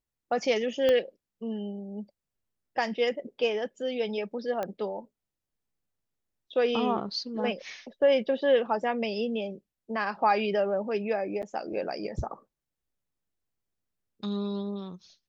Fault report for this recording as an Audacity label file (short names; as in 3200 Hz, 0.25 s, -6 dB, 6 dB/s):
0.890000	0.890000	pop -14 dBFS
4.630000	4.630000	pop -19 dBFS
11.420000	11.430000	gap 8.5 ms